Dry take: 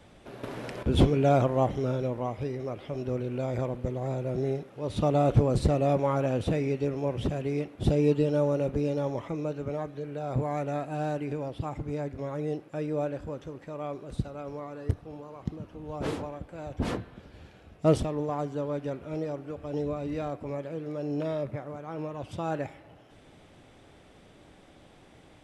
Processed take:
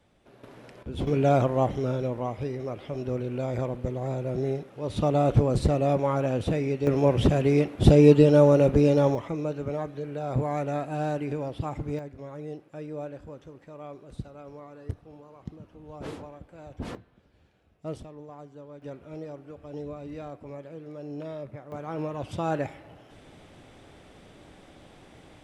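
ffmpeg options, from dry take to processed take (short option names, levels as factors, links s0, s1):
-af "asetnsamples=n=441:p=0,asendcmd='1.07 volume volume 1dB;6.87 volume volume 8.5dB;9.15 volume volume 2dB;11.99 volume volume -6dB;16.95 volume volume -13.5dB;18.82 volume volume -6dB;21.72 volume volume 3.5dB',volume=0.299"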